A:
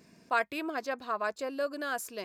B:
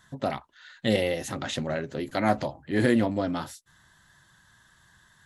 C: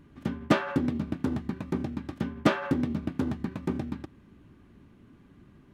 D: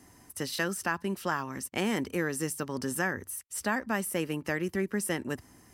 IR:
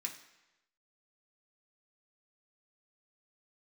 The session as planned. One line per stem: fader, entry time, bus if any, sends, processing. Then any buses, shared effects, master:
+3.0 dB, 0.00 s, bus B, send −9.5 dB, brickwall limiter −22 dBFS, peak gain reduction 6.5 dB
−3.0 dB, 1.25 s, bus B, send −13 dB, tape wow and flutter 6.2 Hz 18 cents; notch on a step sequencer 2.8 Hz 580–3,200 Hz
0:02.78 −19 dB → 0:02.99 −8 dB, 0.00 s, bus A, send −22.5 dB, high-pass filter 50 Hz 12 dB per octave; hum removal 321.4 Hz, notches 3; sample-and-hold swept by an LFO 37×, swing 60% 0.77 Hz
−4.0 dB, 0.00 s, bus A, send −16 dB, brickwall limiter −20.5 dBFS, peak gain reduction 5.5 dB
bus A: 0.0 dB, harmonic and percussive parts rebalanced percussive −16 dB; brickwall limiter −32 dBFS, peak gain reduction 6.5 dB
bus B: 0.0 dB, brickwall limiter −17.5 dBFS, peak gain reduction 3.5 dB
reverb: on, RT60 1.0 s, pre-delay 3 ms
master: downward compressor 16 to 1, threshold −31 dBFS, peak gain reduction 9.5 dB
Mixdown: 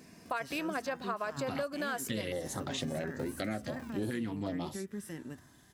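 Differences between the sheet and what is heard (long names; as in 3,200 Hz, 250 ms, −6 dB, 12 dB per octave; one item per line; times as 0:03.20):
stem B: send off
reverb return −8.0 dB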